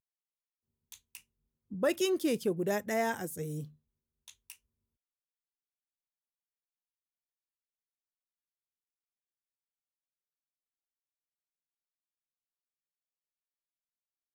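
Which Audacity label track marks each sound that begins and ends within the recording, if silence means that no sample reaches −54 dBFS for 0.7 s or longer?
0.920000	4.560000	sound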